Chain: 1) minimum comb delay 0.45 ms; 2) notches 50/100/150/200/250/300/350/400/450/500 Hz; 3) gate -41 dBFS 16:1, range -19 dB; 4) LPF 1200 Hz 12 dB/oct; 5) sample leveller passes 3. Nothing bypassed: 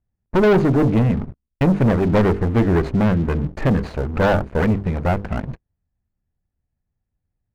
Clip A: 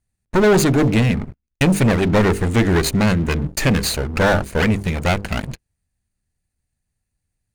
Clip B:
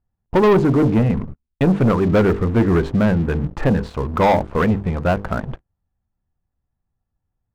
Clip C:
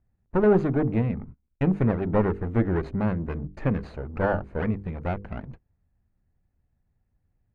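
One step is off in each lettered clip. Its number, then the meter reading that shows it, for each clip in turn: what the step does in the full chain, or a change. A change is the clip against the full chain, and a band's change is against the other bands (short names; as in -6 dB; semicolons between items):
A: 4, momentary loudness spread change -2 LU; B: 1, 1 kHz band +2.5 dB; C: 5, crest factor change +7.5 dB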